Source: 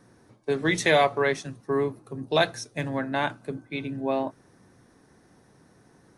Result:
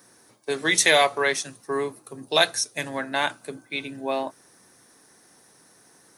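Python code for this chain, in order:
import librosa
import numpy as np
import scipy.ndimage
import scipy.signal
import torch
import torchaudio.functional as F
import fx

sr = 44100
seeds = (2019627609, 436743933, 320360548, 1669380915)

y = fx.riaa(x, sr, side='recording')
y = F.gain(torch.from_numpy(y), 2.0).numpy()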